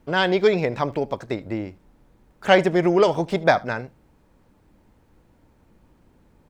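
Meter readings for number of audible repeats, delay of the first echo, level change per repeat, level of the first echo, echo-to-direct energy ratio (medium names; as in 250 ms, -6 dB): 1, 76 ms, no regular repeats, -23.0 dB, -23.0 dB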